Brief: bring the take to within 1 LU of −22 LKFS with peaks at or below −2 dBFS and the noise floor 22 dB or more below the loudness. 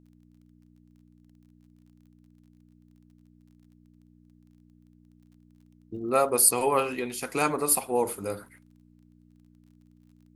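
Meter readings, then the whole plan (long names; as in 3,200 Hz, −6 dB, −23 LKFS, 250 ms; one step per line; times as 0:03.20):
crackle rate 26 per second; mains hum 60 Hz; hum harmonics up to 300 Hz; level of the hum −55 dBFS; integrated loudness −25.0 LKFS; sample peak −6.0 dBFS; target loudness −22.0 LKFS
→ click removal
hum removal 60 Hz, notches 5
level +3 dB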